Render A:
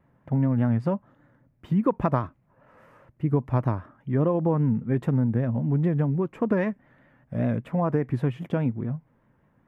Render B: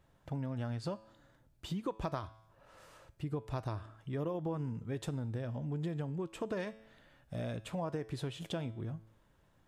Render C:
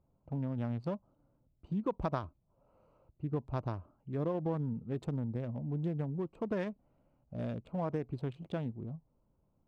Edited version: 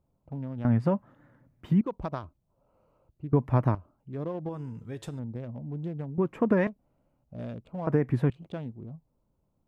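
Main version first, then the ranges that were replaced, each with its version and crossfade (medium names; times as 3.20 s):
C
0.65–1.81 s: from A
3.33–3.75 s: from A
4.49–5.19 s: from B
6.18–6.67 s: from A
7.87–8.30 s: from A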